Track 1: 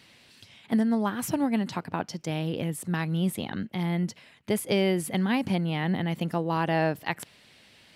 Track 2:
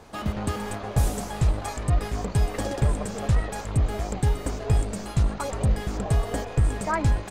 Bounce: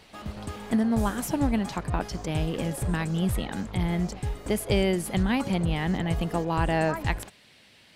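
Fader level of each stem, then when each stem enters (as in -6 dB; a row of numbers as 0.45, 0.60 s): 0.0, -8.5 dB; 0.00, 0.00 s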